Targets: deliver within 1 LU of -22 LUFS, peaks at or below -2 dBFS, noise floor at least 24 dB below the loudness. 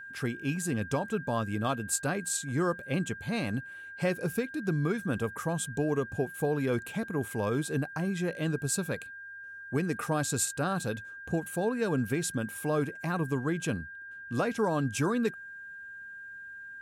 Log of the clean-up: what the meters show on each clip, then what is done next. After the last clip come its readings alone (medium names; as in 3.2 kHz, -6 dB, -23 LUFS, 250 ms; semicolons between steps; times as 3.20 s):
steady tone 1.6 kHz; tone level -42 dBFS; loudness -31.5 LUFS; peak level -16.5 dBFS; loudness target -22.0 LUFS
-> band-stop 1.6 kHz, Q 30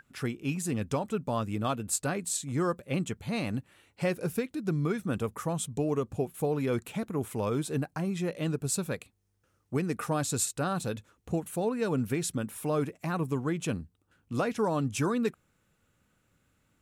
steady tone not found; loudness -31.5 LUFS; peak level -17.0 dBFS; loudness target -22.0 LUFS
-> trim +9.5 dB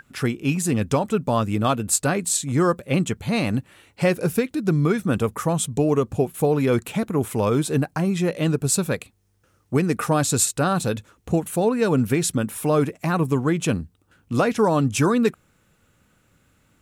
loudness -22.0 LUFS; peak level -7.5 dBFS; noise floor -63 dBFS